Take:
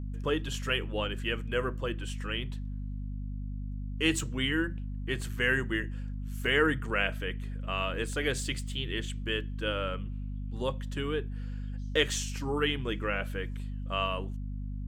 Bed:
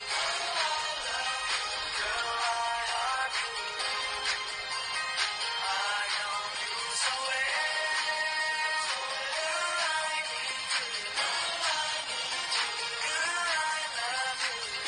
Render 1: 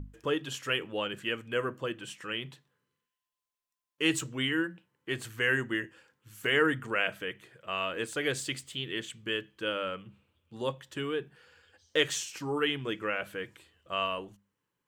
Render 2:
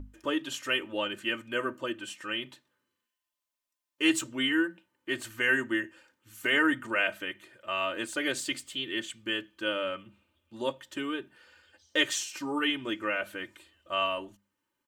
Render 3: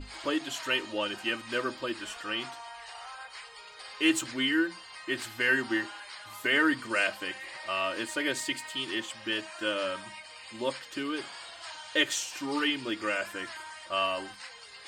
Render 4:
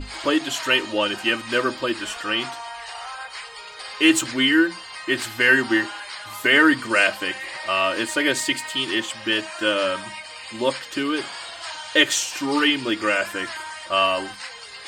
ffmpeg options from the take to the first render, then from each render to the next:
-af "bandreject=f=50:t=h:w=6,bandreject=f=100:t=h:w=6,bandreject=f=150:t=h:w=6,bandreject=f=200:t=h:w=6,bandreject=f=250:t=h:w=6"
-af "lowshelf=f=130:g=-6,aecho=1:1:3.3:0.75"
-filter_complex "[1:a]volume=0.211[s0];[0:a][s0]amix=inputs=2:normalize=0"
-af "volume=2.99,alimiter=limit=0.708:level=0:latency=1"

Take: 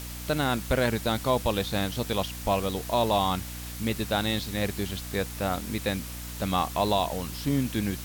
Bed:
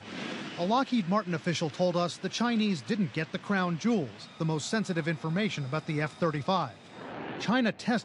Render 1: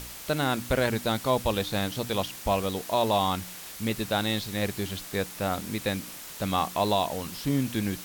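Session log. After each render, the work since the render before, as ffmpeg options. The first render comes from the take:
-af "bandreject=f=60:t=h:w=4,bandreject=f=120:t=h:w=4,bandreject=f=180:t=h:w=4,bandreject=f=240:t=h:w=4,bandreject=f=300:t=h:w=4"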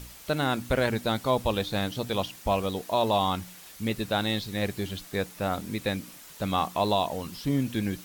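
-af "afftdn=nr=7:nf=-42"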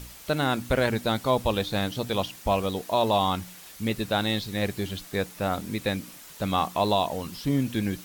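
-af "volume=1.19"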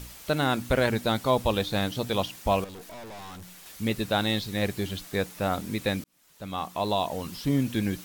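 -filter_complex "[0:a]asettb=1/sr,asplit=3[s0][s1][s2];[s0]atrim=end=2.644[s3];[s1]atrim=start=2.64:end=3.66,asetpts=PTS-STARTPTS,afade=t=in:d=0.004:c=qsin,afade=t=out:st=1.016:d=0.004:c=qsin,aeval=exprs='(tanh(112*val(0)+0.35)-tanh(0.35))/112':c=same[s4];[s2]atrim=start=3.656[s5];[s3][s4]acrossfade=d=0.004:c1=hsin:c2=qsin[s6];[s6][s5]acrossfade=d=0.004:c1=qsin:c2=hsin,asplit=2[s7][s8];[s7]atrim=end=6.04,asetpts=PTS-STARTPTS,afade=t=out:st=6.036:d=0.004:c=hsin[s9];[s8]atrim=start=6.04,asetpts=PTS-STARTPTS,afade=t=in:d=1.28[s10];[s9][s10]concat=n=2:v=0:a=1"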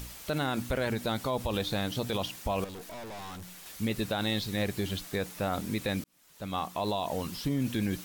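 -af "alimiter=limit=0.0944:level=0:latency=1:release=51,acompressor=mode=upward:threshold=0.00316:ratio=2.5"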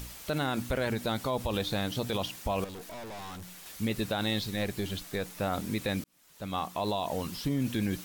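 -filter_complex "[0:a]asettb=1/sr,asplit=3[s0][s1][s2];[s0]atrim=end=4.504[s3];[s1]atrim=start=4.5:end=5.4,asetpts=PTS-STARTPTS,afade=t=in:d=0.004:c=qsin,afade=t=out:st=0.896:d=0.004:c=qsin,aeval=exprs='if(lt(val(0),0),0.708*val(0),val(0))':c=same[s4];[s2]atrim=start=5.396[s5];[s3][s4]acrossfade=d=0.004:c1=hsin:c2=qsin[s6];[s6][s5]acrossfade=d=0.004:c1=qsin:c2=hsin"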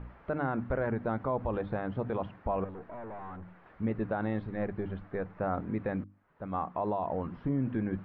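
-af "lowpass=f=1600:w=0.5412,lowpass=f=1600:w=1.3066,bandreject=f=50:t=h:w=6,bandreject=f=100:t=h:w=6,bandreject=f=150:t=h:w=6,bandreject=f=200:t=h:w=6,bandreject=f=250:t=h:w=6,bandreject=f=300:t=h:w=6"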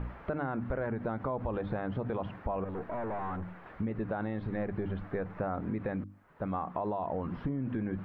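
-filter_complex "[0:a]asplit=2[s0][s1];[s1]alimiter=level_in=2.51:limit=0.0631:level=0:latency=1:release=49,volume=0.398,volume=1.26[s2];[s0][s2]amix=inputs=2:normalize=0,acompressor=threshold=0.0316:ratio=6"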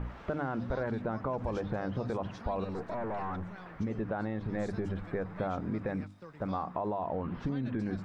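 -filter_complex "[1:a]volume=0.0841[s0];[0:a][s0]amix=inputs=2:normalize=0"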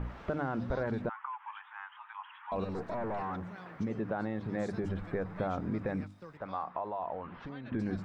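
-filter_complex "[0:a]asettb=1/sr,asplit=3[s0][s1][s2];[s0]atrim=end=1.094[s3];[s1]atrim=start=1.09:end=2.52,asetpts=PTS-STARTPTS,afade=t=in:d=0.004:c=qsin,afade=t=out:st=1.426:d=0.004:c=qsin,asuperpass=centerf=1700:order=20:qfactor=0.69[s4];[s2]atrim=start=2.516[s5];[s3][s4]acrossfade=d=0.004:c1=hsin:c2=qsin[s6];[s6][s5]acrossfade=d=0.004:c1=qsin:c2=hsin,asettb=1/sr,asplit=3[s7][s8][s9];[s7]atrim=end=3.214[s10];[s8]atrim=start=3.21:end=4.84,asetpts=PTS-STARTPTS,afade=t=in:d=0.004:c=qsin,afade=t=out:st=1.626:d=0.004:c=qsin,highpass=110[s11];[s9]atrim=start=4.836[s12];[s10][s11]acrossfade=d=0.004:c1=hsin:c2=qsin[s13];[s13][s12]acrossfade=d=0.004:c1=qsin:c2=hsin,asettb=1/sr,asplit=3[s14][s15][s16];[s14]atrim=end=6.374[s17];[s15]atrim=start=6.37:end=7.72,asetpts=PTS-STARTPTS,afade=t=in:d=0.004:c=qsin,afade=t=out:st=1.346:d=0.004:c=qsin,acrossover=split=560 4200:gain=0.251 1 0.178[s18][s19][s20];[s18][s19][s20]amix=inputs=3:normalize=0[s21];[s16]atrim=start=7.716[s22];[s17][s21]acrossfade=d=0.004:c1=hsin:c2=qsin[s23];[s23][s22]acrossfade=d=0.004:c1=qsin:c2=hsin"

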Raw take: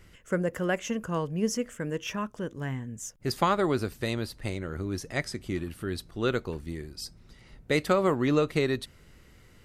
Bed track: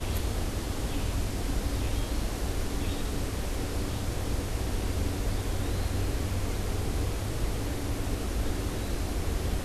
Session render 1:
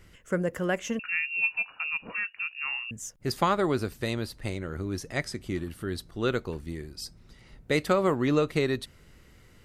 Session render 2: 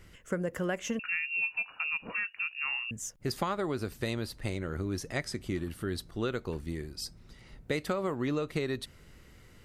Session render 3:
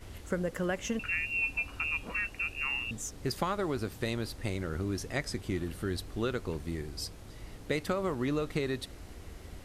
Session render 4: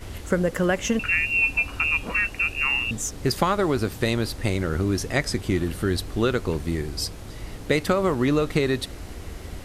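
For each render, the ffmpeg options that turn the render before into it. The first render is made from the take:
-filter_complex "[0:a]asettb=1/sr,asplit=3[s0][s1][s2];[s0]atrim=end=0.994[s3];[s1]atrim=start=0.99:end=2.91,asetpts=PTS-STARTPTS,afade=t=in:d=0.004:c=qsin,afade=t=out:st=1.916:d=0.004:c=qsin,lowpass=f=2500:t=q:w=0.5098,lowpass=f=2500:t=q:w=0.6013,lowpass=f=2500:t=q:w=0.9,lowpass=f=2500:t=q:w=2.563,afreqshift=-2900[s4];[s2]atrim=start=2.906[s5];[s3][s4]acrossfade=d=0.004:c1=hsin:c2=qsin[s6];[s6][s5]acrossfade=d=0.004:c1=qsin:c2=hsin,asettb=1/sr,asplit=3[s7][s8][s9];[s7]atrim=end=5.564[s10];[s8]atrim=start=5.56:end=6.19,asetpts=PTS-STARTPTS,afade=t=in:d=0.004:c=qsin,afade=t=out:st=0.626:d=0.004:c=qsin,bandreject=f=2500:w=12[s11];[s9]atrim=start=6.186[s12];[s10][s11]acrossfade=d=0.004:c1=hsin:c2=qsin[s13];[s13][s12]acrossfade=d=0.004:c1=qsin:c2=hsin"
-af "acompressor=threshold=0.0398:ratio=6"
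-filter_complex "[1:a]volume=0.141[s0];[0:a][s0]amix=inputs=2:normalize=0"
-af "volume=3.16"

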